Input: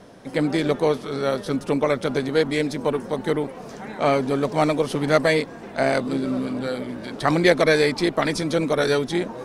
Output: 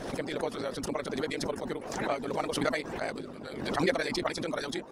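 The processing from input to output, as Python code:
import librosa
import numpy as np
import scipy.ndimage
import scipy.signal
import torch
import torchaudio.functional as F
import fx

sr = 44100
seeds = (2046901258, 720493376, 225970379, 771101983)

y = fx.stretch_grains(x, sr, factor=0.52, grain_ms=40.0)
y = fx.hpss(y, sr, part='harmonic', gain_db=-17)
y = fx.pre_swell(y, sr, db_per_s=49.0)
y = y * 10.0 ** (-7.5 / 20.0)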